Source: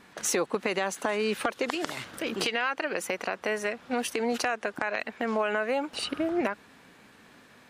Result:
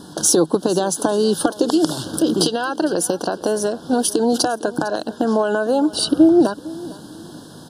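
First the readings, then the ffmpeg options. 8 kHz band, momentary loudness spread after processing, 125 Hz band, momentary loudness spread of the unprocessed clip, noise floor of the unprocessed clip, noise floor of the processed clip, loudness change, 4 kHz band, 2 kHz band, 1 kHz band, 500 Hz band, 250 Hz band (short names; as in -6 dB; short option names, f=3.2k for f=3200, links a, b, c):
+14.0 dB, 14 LU, +16.0 dB, 5 LU, -56 dBFS, -40 dBFS, +11.5 dB, +10.0 dB, 0.0 dB, +8.0 dB, +11.0 dB, +16.0 dB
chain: -filter_complex "[0:a]equalizer=f=100:t=o:w=0.33:g=7,equalizer=f=160:t=o:w=0.33:g=12,equalizer=f=315:t=o:w=0.33:g=12,equalizer=f=1.25k:t=o:w=0.33:g=-10,equalizer=f=5k:t=o:w=0.33:g=6,equalizer=f=10k:t=o:w=0.33:g=10,asplit=2[a][b];[b]acompressor=threshold=-35dB:ratio=6,volume=2.5dB[c];[a][c]amix=inputs=2:normalize=0,asuperstop=centerf=2200:order=8:qfactor=1.4,aecho=1:1:455|910:0.112|0.0292,volume=6.5dB"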